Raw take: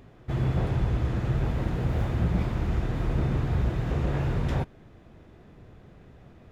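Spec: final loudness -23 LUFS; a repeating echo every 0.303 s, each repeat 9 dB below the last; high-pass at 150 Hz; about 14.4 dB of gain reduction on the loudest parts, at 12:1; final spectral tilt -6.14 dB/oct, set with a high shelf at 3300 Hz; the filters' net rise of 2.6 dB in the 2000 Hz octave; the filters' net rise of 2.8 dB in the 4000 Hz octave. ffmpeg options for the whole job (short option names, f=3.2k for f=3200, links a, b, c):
-af "highpass=150,equalizer=f=2k:t=o:g=4,highshelf=f=3.3k:g=-8,equalizer=f=4k:t=o:g=7.5,acompressor=threshold=-41dB:ratio=12,aecho=1:1:303|606|909|1212:0.355|0.124|0.0435|0.0152,volume=23dB"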